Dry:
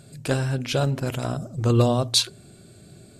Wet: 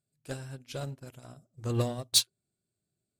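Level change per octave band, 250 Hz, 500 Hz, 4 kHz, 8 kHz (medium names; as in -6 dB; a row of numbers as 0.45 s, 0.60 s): -13.5 dB, -13.0 dB, -5.0 dB, -2.5 dB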